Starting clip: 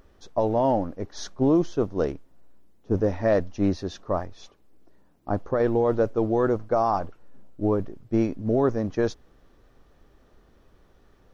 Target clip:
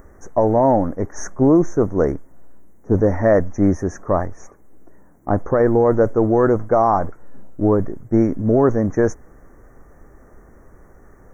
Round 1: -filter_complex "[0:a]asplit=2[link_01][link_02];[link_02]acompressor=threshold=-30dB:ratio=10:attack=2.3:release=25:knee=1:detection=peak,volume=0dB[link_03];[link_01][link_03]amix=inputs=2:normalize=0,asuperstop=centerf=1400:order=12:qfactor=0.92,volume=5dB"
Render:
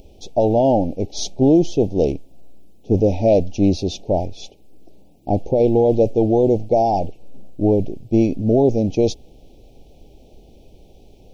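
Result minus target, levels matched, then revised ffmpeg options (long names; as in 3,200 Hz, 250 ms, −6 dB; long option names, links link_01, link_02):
4,000 Hz band +19.5 dB
-filter_complex "[0:a]asplit=2[link_01][link_02];[link_02]acompressor=threshold=-30dB:ratio=10:attack=2.3:release=25:knee=1:detection=peak,volume=0dB[link_03];[link_01][link_03]amix=inputs=2:normalize=0,asuperstop=centerf=3600:order=12:qfactor=0.92,volume=5dB"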